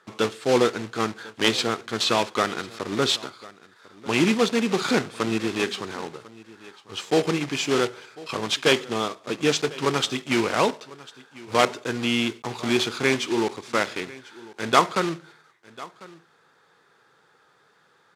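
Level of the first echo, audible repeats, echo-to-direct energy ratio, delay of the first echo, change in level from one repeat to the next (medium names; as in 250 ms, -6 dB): -20.5 dB, 1, -20.5 dB, 1047 ms, no regular repeats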